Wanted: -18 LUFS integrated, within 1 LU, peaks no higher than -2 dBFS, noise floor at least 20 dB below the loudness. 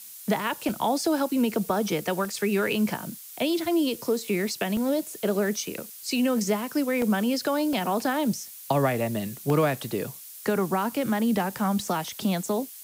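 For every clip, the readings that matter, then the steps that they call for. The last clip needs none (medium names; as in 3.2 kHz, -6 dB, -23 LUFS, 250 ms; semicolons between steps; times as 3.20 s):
dropouts 8; longest dropout 1.3 ms; noise floor -44 dBFS; noise floor target -47 dBFS; loudness -26.5 LUFS; peak level -10.5 dBFS; loudness target -18.0 LUFS
-> interpolate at 0.69/2.25/4.77/7.02/7.73/8.44/9.50/11.83 s, 1.3 ms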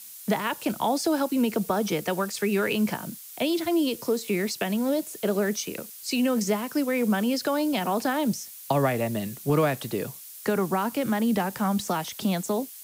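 dropouts 0; noise floor -44 dBFS; noise floor target -47 dBFS
-> noise print and reduce 6 dB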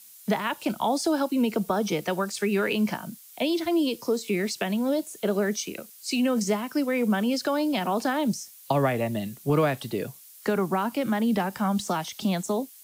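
noise floor -50 dBFS; loudness -26.5 LUFS; peak level -11.0 dBFS; loudness target -18.0 LUFS
-> trim +8.5 dB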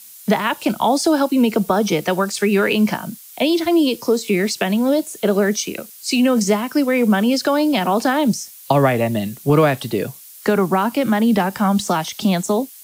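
loudness -18.0 LUFS; peak level -2.5 dBFS; noise floor -41 dBFS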